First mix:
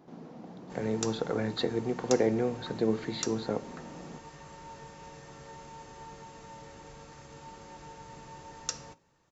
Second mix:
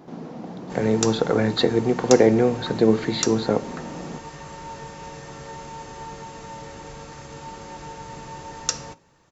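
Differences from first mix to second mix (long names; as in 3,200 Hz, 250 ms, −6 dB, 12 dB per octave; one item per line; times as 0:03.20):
speech +10.5 dB
background +10.0 dB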